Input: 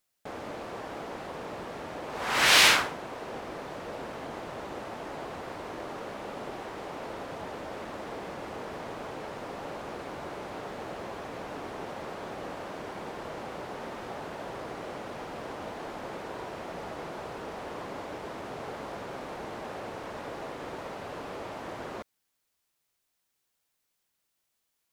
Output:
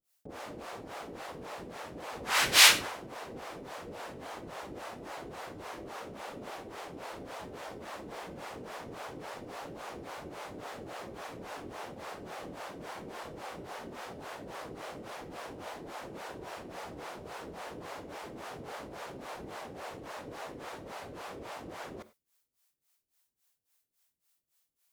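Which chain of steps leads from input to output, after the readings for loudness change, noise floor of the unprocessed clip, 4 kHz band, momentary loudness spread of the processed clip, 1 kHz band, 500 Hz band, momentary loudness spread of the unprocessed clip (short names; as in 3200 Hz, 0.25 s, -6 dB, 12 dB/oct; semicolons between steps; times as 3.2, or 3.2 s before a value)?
-2.0 dB, -79 dBFS, -1.0 dB, 1 LU, -4.5 dB, -5.5 dB, 1 LU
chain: high shelf 5300 Hz +7.5 dB; harmonic tremolo 3.6 Hz, depth 100%, crossover 490 Hz; non-linear reverb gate 0.12 s flat, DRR 12 dB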